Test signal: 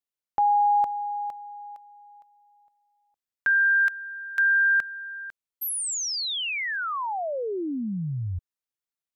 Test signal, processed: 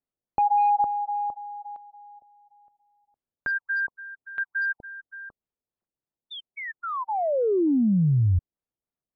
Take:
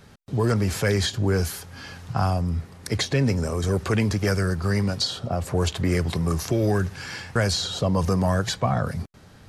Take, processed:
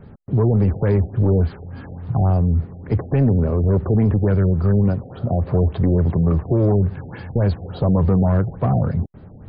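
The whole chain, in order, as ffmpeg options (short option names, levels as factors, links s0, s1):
-af "asoftclip=type=tanh:threshold=0.106,tiltshelf=f=1200:g=10,afftfilt=real='re*lt(b*sr/1024,780*pow(5100/780,0.5+0.5*sin(2*PI*3.5*pts/sr)))':imag='im*lt(b*sr/1024,780*pow(5100/780,0.5+0.5*sin(2*PI*3.5*pts/sr)))':win_size=1024:overlap=0.75"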